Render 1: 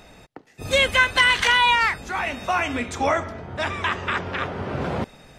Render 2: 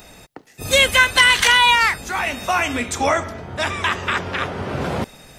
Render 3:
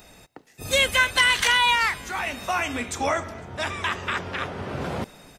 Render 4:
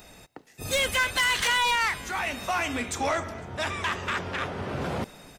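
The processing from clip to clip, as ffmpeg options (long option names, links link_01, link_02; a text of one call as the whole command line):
ffmpeg -i in.wav -af "aemphasis=mode=production:type=50kf,volume=2.5dB" out.wav
ffmpeg -i in.wav -filter_complex "[0:a]asplit=4[link_01][link_02][link_03][link_04];[link_02]adelay=252,afreqshift=64,volume=-24dB[link_05];[link_03]adelay=504,afreqshift=128,volume=-29.4dB[link_06];[link_04]adelay=756,afreqshift=192,volume=-34.7dB[link_07];[link_01][link_05][link_06][link_07]amix=inputs=4:normalize=0,volume=-6dB" out.wav
ffmpeg -i in.wav -af "asoftclip=type=tanh:threshold=-20dB" out.wav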